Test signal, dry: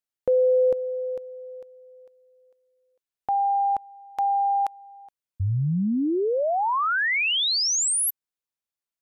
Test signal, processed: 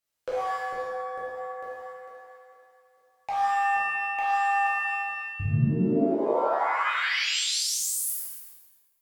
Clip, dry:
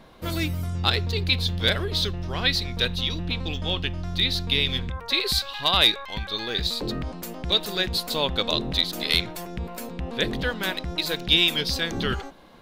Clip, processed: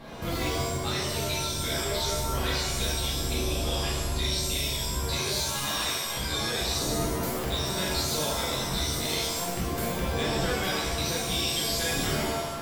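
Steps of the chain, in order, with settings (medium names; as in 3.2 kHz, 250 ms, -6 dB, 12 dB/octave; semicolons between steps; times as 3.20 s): in parallel at -5 dB: one-sided clip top -23.5 dBFS; on the sum: compression 6:1, threshold -32 dBFS; wavefolder -23.5 dBFS; gain riding within 3 dB 2 s; pitch-shifted reverb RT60 1 s, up +7 st, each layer -2 dB, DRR -6.5 dB; trim -4 dB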